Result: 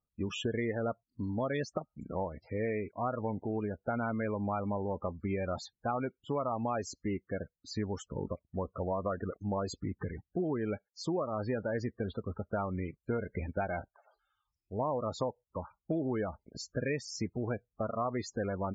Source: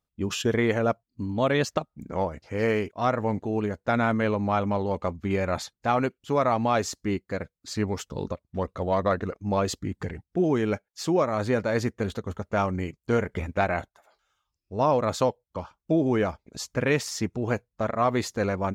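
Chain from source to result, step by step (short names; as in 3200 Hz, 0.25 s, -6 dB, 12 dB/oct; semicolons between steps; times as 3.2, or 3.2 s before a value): loudest bins only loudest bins 32; compressor 3:1, threshold -27 dBFS, peak gain reduction 7.5 dB; gain -4 dB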